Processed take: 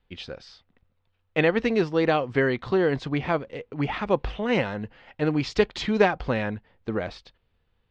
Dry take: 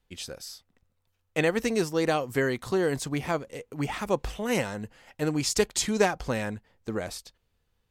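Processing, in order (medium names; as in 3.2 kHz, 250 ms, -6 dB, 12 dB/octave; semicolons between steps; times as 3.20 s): low-pass 3.8 kHz 24 dB/octave; trim +3.5 dB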